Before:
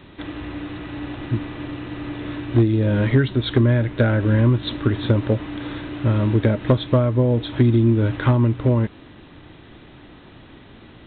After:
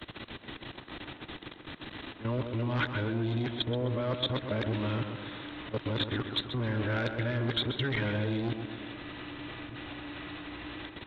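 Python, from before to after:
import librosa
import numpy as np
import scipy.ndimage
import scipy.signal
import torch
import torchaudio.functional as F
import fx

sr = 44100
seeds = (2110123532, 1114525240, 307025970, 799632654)

p1 = np.flip(x).copy()
p2 = fx.fold_sine(p1, sr, drive_db=4, ceiling_db=-8.0)
p3 = p1 + F.gain(torch.from_numpy(p2), -5.0).numpy()
p4 = fx.auto_swell(p3, sr, attack_ms=116.0)
p5 = fx.high_shelf(p4, sr, hz=2900.0, db=9.5)
p6 = fx.level_steps(p5, sr, step_db=18)
p7 = fx.low_shelf(p6, sr, hz=460.0, db=-7.0)
p8 = fx.echo_tape(p7, sr, ms=128, feedback_pct=56, wet_db=-6, lp_hz=2100.0, drive_db=4.0, wow_cents=37)
p9 = fx.band_squash(p8, sr, depth_pct=40)
y = F.gain(torch.from_numpy(p9), -7.5).numpy()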